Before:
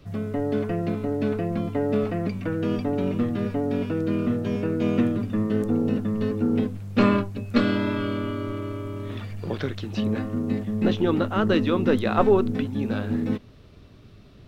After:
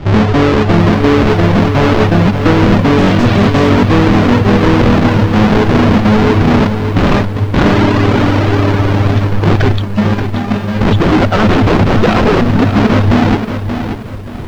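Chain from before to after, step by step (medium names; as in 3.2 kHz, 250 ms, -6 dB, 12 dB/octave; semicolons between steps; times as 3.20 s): square wave that keeps the level; reverb removal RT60 1.5 s; 2.98–3.69 s: peaking EQ 3.9 kHz +9.5 dB 2.5 oct; 9.82–10.81 s: feedback comb 200 Hz, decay 0.43 s, harmonics all, mix 80%; wavefolder -22.5 dBFS; distance through air 200 m; loudness maximiser +24.5 dB; bit-crushed delay 580 ms, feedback 35%, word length 6-bit, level -8 dB; trim -4 dB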